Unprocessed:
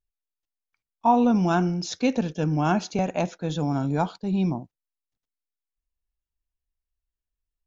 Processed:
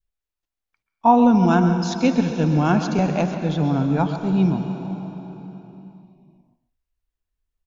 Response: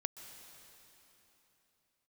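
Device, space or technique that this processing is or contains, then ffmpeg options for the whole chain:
swimming-pool hall: -filter_complex "[1:a]atrim=start_sample=2205[link_01];[0:a][link_01]afir=irnorm=-1:irlink=0,highshelf=frequency=3700:gain=-7,adynamicequalizer=threshold=0.0126:dfrequency=700:dqfactor=1:tfrequency=700:tqfactor=1:attack=5:release=100:ratio=0.375:range=2:mode=cutabove:tftype=bell,asettb=1/sr,asplit=3[link_02][link_03][link_04];[link_02]atrim=end=3.314[link_05];[link_03]atrim=start=3.31:end=4.09,asetpts=PTS-STARTPTS,afade=type=in:duration=0.004:curve=qsin,afade=type=out:start_time=0.776:duration=0.004:curve=qsin,lowpass=5300[link_06];[link_04]atrim=start=4.086[link_07];[link_05][link_06]acrossfade=duration=0.004:curve1=hsin:curve2=qsin[link_08];[link_08][link_07]acrossfade=duration=0.004:curve1=qsin:curve2=hsin,aecho=1:1:136:0.224,volume=7dB"

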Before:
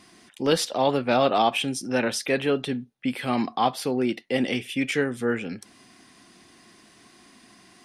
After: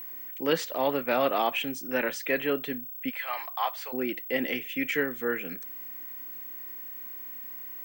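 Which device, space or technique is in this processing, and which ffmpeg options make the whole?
old television with a line whistle: -filter_complex "[0:a]highpass=frequency=170:width=0.5412,highpass=frequency=170:width=1.3066,equalizer=frequency=220:width_type=q:width=4:gain=-9,equalizer=frequency=380:width_type=q:width=4:gain=-3,equalizer=frequency=760:width_type=q:width=4:gain=-5,equalizer=frequency=1900:width_type=q:width=4:gain=5,equalizer=frequency=3700:width_type=q:width=4:gain=-7,equalizer=frequency=5300:width_type=q:width=4:gain=-9,lowpass=frequency=7100:width=0.5412,lowpass=frequency=7100:width=1.3066,aeval=exprs='val(0)+0.0178*sin(2*PI*15734*n/s)':channel_layout=same,asplit=3[link_01][link_02][link_03];[link_01]afade=type=out:start_time=3.09:duration=0.02[link_04];[link_02]highpass=frequency=670:width=0.5412,highpass=frequency=670:width=1.3066,afade=type=in:start_time=3.09:duration=0.02,afade=type=out:start_time=3.92:duration=0.02[link_05];[link_03]afade=type=in:start_time=3.92:duration=0.02[link_06];[link_04][link_05][link_06]amix=inputs=3:normalize=0,volume=-2.5dB"

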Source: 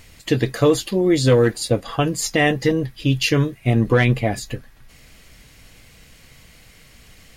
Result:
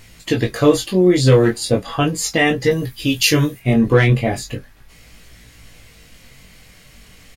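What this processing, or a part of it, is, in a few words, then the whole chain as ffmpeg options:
double-tracked vocal: -filter_complex "[0:a]asettb=1/sr,asplit=3[link_01][link_02][link_03];[link_01]atrim=end=2.714[link_04];[link_02]atrim=start=2.71:end=3.6,asetpts=PTS-STARTPTS,afade=type=in:duration=0.004:curve=qsin,afade=type=out:start_time=0.886:duration=0.004:curve=qsin,aemphasis=mode=production:type=50kf[link_05];[link_03]atrim=start=3.596[link_06];[link_04][link_05]acrossfade=duration=0.004:curve1=hsin:curve2=qsin[link_07];[link_07][link_06]acrossfade=duration=0.004:curve1=qsin:curve2=hsin,asplit=2[link_08][link_09];[link_09]adelay=17,volume=-11dB[link_10];[link_08][link_10]amix=inputs=2:normalize=0,flanger=delay=17.5:depth=4.9:speed=0.37,volume=5dB"

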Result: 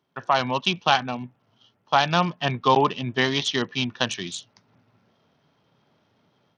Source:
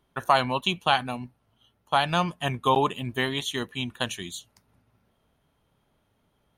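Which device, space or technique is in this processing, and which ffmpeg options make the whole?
Bluetooth headset: -af "highpass=frequency=110:width=0.5412,highpass=frequency=110:width=1.3066,dynaudnorm=framelen=250:gausssize=3:maxgain=9dB,aresample=16000,aresample=44100,volume=-3dB" -ar 48000 -c:a sbc -b:a 64k

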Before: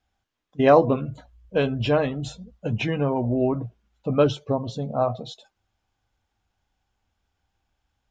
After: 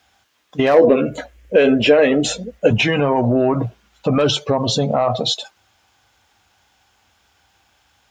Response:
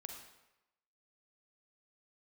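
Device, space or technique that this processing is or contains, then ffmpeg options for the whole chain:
mastering chain: -filter_complex "[0:a]highpass=frequency=57:width=0.5412,highpass=frequency=57:width=1.3066,equalizer=frequency=550:width_type=o:width=2.8:gain=4,acompressor=threshold=-23dB:ratio=1.5,asoftclip=type=tanh:threshold=-9dB,tiltshelf=frequency=930:gain=-6.5,asoftclip=type=hard:threshold=-13dB,alimiter=level_in=22.5dB:limit=-1dB:release=50:level=0:latency=1,asettb=1/sr,asplit=3[link_01][link_02][link_03];[link_01]atrim=end=0.744[link_04];[link_02]atrim=start=0.74:end=2.71,asetpts=PTS-STARTPTS,afade=type=in:duration=0.004:curve=qsin,afade=type=out:start_time=1.966:duration=0.004:curve=qsin,equalizer=frequency=125:width_type=o:width=1:gain=-12,equalizer=frequency=250:width_type=o:width=1:gain=5,equalizer=frequency=500:width_type=o:width=1:gain=9,equalizer=frequency=1000:width_type=o:width=1:gain=-9,equalizer=frequency=2000:width_type=o:width=1:gain=7,equalizer=frequency=4000:width_type=o:width=1:gain=-6[link_05];[link_03]atrim=start=2.706[link_06];[link_04][link_05]acrossfade=duration=0.004:curve1=hsin:curve2=qsin[link_07];[link_07][link_06]acrossfade=duration=0.004:curve1=qsin:curve2=hsin,volume=-7dB"

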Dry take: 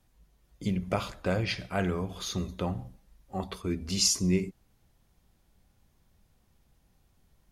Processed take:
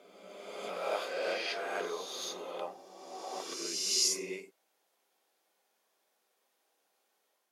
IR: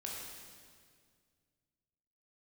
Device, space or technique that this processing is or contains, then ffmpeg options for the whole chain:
ghost voice: -filter_complex "[0:a]areverse[link_01];[1:a]atrim=start_sample=2205[link_02];[link_01][link_02]afir=irnorm=-1:irlink=0,areverse,highpass=frequency=410:width=0.5412,highpass=frequency=410:width=1.3066,volume=-1dB"

